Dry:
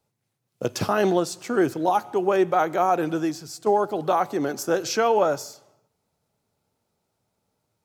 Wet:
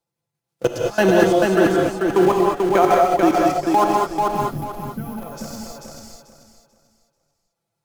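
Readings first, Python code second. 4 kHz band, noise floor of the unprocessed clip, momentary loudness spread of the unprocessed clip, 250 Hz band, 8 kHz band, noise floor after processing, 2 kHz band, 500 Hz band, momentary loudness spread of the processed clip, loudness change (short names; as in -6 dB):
+3.0 dB, -78 dBFS, 7 LU, +7.0 dB, 0.0 dB, -82 dBFS, +6.0 dB, +5.0 dB, 17 LU, +5.5 dB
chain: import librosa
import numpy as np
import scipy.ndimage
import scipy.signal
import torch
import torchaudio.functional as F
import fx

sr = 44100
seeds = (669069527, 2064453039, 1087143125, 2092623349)

p1 = x + 0.68 * np.pad(x, (int(5.9 * sr / 1000.0), 0))[:len(x)]
p2 = p1 * (1.0 - 0.95 / 2.0 + 0.95 / 2.0 * np.cos(2.0 * np.pi * 1.8 * (np.arange(len(p1)) / sr)))
p3 = fx.schmitt(p2, sr, flips_db=-31.0)
p4 = p2 + (p3 * 10.0 ** (-9.0 / 20.0))
p5 = fx.level_steps(p4, sr, step_db=23)
p6 = fx.low_shelf(p5, sr, hz=210.0, db=-3.5)
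p7 = fx.spec_box(p6, sr, start_s=4.31, length_s=0.86, low_hz=270.0, high_hz=10000.0, gain_db=-26)
p8 = p7 + fx.echo_feedback(p7, sr, ms=439, feedback_pct=29, wet_db=-3.5, dry=0)
p9 = fx.rev_gated(p8, sr, seeds[0], gate_ms=240, shape='rising', drr_db=-0.5)
y = p9 * 10.0 ** (9.0 / 20.0)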